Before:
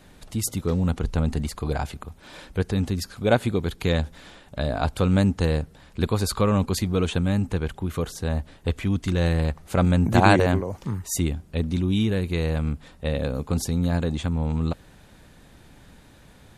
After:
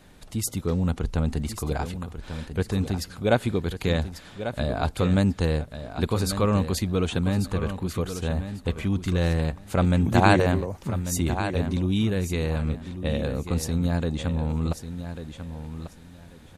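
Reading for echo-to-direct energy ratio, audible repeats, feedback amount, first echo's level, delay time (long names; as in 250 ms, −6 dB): −10.0 dB, 2, 20%, −10.0 dB, 1,143 ms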